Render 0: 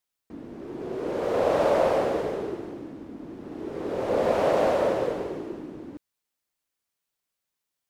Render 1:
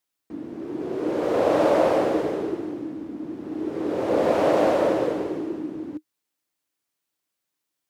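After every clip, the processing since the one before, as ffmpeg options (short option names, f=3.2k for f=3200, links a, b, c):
-af "highpass=83,equalizer=f=310:t=o:w=0.23:g=9,volume=2dB"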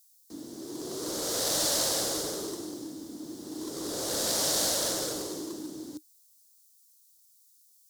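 -filter_complex "[0:a]acrossover=split=170|1300|1700[a][b][c][d];[b]volume=26.5dB,asoftclip=hard,volume=-26.5dB[e];[a][e][c][d]amix=inputs=4:normalize=0,aexciter=amount=15.3:drive=7.3:freq=3.9k,volume=-8dB"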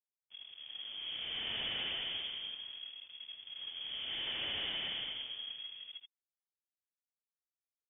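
-af "aeval=exprs='sgn(val(0))*max(abs(val(0))-0.00562,0)':c=same,aecho=1:1:80:0.447,lowpass=f=3.1k:t=q:w=0.5098,lowpass=f=3.1k:t=q:w=0.6013,lowpass=f=3.1k:t=q:w=0.9,lowpass=f=3.1k:t=q:w=2.563,afreqshift=-3600,volume=-4dB"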